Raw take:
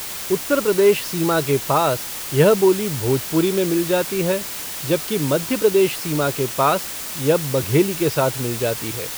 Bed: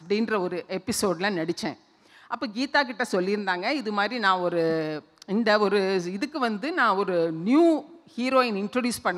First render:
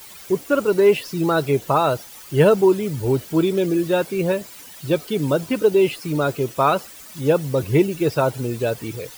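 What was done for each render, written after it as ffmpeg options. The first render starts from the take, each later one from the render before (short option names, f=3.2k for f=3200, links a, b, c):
-af "afftdn=nr=14:nf=-30"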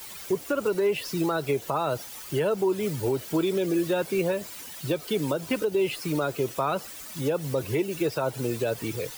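-filter_complex "[0:a]acrossover=split=130|330[a][b][c];[a]acompressor=threshold=-40dB:ratio=4[d];[b]acompressor=threshold=-34dB:ratio=4[e];[c]acompressor=threshold=-20dB:ratio=4[f];[d][e][f]amix=inputs=3:normalize=0,alimiter=limit=-16.5dB:level=0:latency=1:release=164"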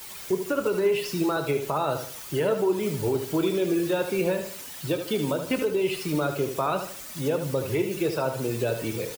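-filter_complex "[0:a]asplit=2[a][b];[b]adelay=27,volume=-13dB[c];[a][c]amix=inputs=2:normalize=0,asplit=2[d][e];[e]aecho=0:1:76|152|228|304:0.398|0.147|0.0545|0.0202[f];[d][f]amix=inputs=2:normalize=0"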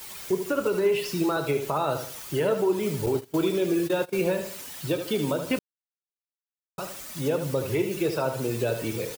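-filter_complex "[0:a]asettb=1/sr,asplit=3[a][b][c];[a]atrim=end=3.064[d];[b]atrim=start=3.06:end=4.27,asetpts=PTS-STARTPTS,afade=t=in:d=0.004:c=qsin,afade=t=out:st=1.206:d=0.004:c=qsin,agate=range=-21dB:threshold=-29dB:ratio=16:release=100:detection=peak[e];[c]atrim=start=4.266[f];[d][e]acrossfade=d=0.004:c1=hsin:c2=qsin[g];[g][f]acrossfade=d=0.004:c1=qsin:c2=hsin,asplit=3[h][i][j];[h]atrim=end=5.59,asetpts=PTS-STARTPTS,afade=t=out:st=5.586:d=0.004:c=hsin[k];[i]atrim=start=5.59:end=6.78,asetpts=PTS-STARTPTS,volume=0[l];[j]atrim=start=6.78,asetpts=PTS-STARTPTS,afade=t=in:d=0.004:c=hsin[m];[k][l][m]concat=n=3:v=0:a=1"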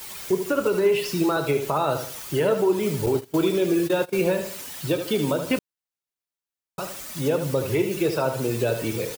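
-af "volume=3dB"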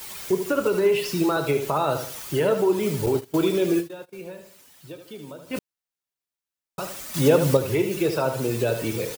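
-filter_complex "[0:a]asplit=5[a][b][c][d][e];[a]atrim=end=4.09,asetpts=PTS-STARTPTS,afade=t=out:st=3.79:d=0.3:c=exp:silence=0.158489[f];[b]atrim=start=4.09:end=5.27,asetpts=PTS-STARTPTS,volume=-16dB[g];[c]atrim=start=5.27:end=7.142,asetpts=PTS-STARTPTS,afade=t=in:d=0.3:c=exp:silence=0.158489[h];[d]atrim=start=7.138:end=7.572,asetpts=PTS-STARTPTS,volume=6dB[i];[e]atrim=start=7.568[j];[f][g][h]concat=n=3:v=0:a=1[k];[k][i]acrossfade=d=0.004:c1=hsin:c2=hsin[l];[l][j]acrossfade=d=0.004:c1=hsin:c2=hsin"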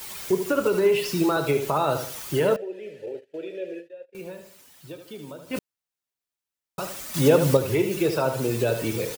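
-filter_complex "[0:a]asettb=1/sr,asplit=3[a][b][c];[a]atrim=end=2.564[d];[b]atrim=start=2.56:end=4.15,asetpts=PTS-STARTPTS,afade=t=in:d=0.004:c=qsin,afade=t=out:st=1.586:d=0.004:c=qsin,asplit=3[e][f][g];[e]bandpass=f=530:t=q:w=8,volume=0dB[h];[f]bandpass=f=1.84k:t=q:w=8,volume=-6dB[i];[g]bandpass=f=2.48k:t=q:w=8,volume=-9dB[j];[h][i][j]amix=inputs=3:normalize=0[k];[c]atrim=start=4.146[l];[d][k]acrossfade=d=0.004:c1=hsin:c2=qsin[m];[m][l]acrossfade=d=0.004:c1=qsin:c2=hsin"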